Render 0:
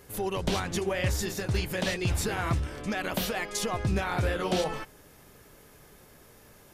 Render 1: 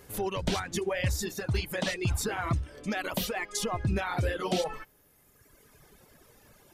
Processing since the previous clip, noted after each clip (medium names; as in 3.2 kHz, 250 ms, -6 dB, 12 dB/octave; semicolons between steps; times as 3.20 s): reverb removal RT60 1.7 s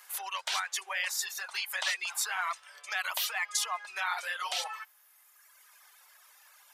inverse Chebyshev high-pass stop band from 270 Hz, stop band 60 dB; trim +3 dB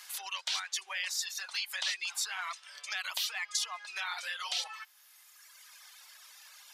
peaking EQ 4.4 kHz +12.5 dB 2.1 oct; compression 1.5:1, threshold -45 dBFS, peak gain reduction 10 dB; trim -2 dB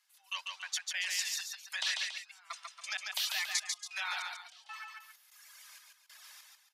trance gate "..x.x.xxx..xx." 96 bpm -24 dB; Chebyshev high-pass 590 Hz, order 6; on a send: multi-tap echo 144/280 ms -3.5/-11.5 dB